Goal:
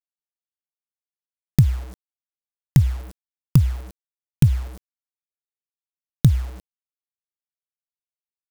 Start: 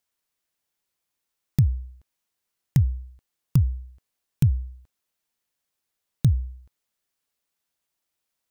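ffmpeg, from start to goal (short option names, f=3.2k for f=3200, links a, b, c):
-af "equalizer=f=85:w=1.1:g=-6.5,acrusher=bits=7:mix=0:aa=0.000001,volume=8dB"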